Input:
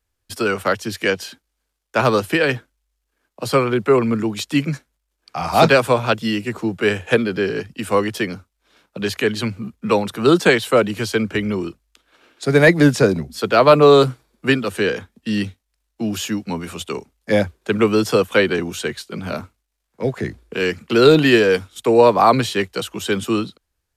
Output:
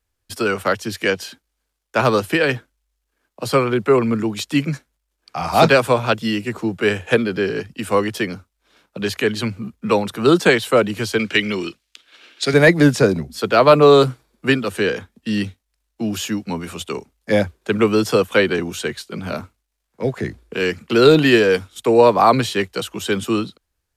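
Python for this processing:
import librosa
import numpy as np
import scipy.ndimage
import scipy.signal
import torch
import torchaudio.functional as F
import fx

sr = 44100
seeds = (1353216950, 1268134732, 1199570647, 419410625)

y = fx.weighting(x, sr, curve='D', at=(11.19, 12.54))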